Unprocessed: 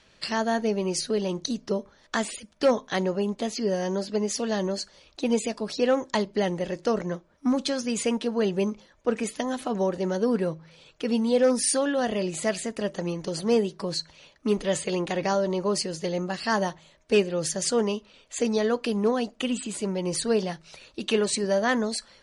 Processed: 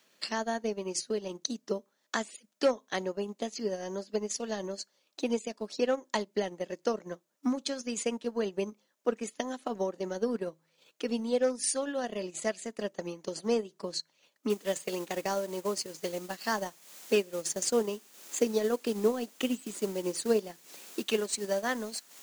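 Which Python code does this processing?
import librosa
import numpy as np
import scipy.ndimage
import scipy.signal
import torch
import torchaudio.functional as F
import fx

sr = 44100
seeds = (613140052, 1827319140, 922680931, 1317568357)

y = fx.noise_floor_step(x, sr, seeds[0], at_s=14.5, before_db=-67, after_db=-42, tilt_db=0.0)
y = fx.peak_eq(y, sr, hz=330.0, db=5.0, octaves=1.3, at=(17.46, 21.04))
y = scipy.signal.sosfilt(scipy.signal.butter(4, 200.0, 'highpass', fs=sr, output='sos'), y)
y = fx.peak_eq(y, sr, hz=6800.0, db=5.0, octaves=0.47)
y = fx.transient(y, sr, attack_db=5, sustain_db=-10)
y = y * 10.0 ** (-8.0 / 20.0)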